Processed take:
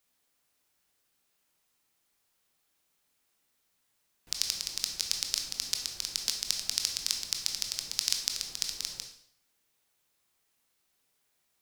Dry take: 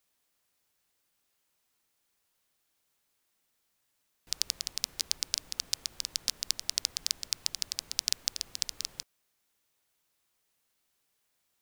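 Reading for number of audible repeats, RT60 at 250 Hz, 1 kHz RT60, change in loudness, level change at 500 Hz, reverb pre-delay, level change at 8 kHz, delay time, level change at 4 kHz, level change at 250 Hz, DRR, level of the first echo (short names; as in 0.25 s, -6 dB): none, 0.65 s, 0.65 s, +1.5 dB, +1.5 dB, 18 ms, +1.5 dB, none, +1.5 dB, +2.5 dB, 3.0 dB, none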